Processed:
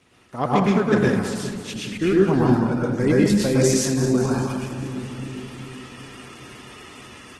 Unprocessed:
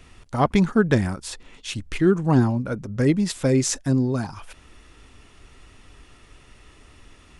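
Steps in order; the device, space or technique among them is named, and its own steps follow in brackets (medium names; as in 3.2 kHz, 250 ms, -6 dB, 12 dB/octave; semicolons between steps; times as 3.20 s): two-band feedback delay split 370 Hz, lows 405 ms, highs 206 ms, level -10.5 dB; far-field microphone of a smart speaker (reverberation RT60 0.55 s, pre-delay 105 ms, DRR -4 dB; high-pass 150 Hz 12 dB/octave; level rider gain up to 11.5 dB; trim -5 dB; Opus 16 kbps 48 kHz)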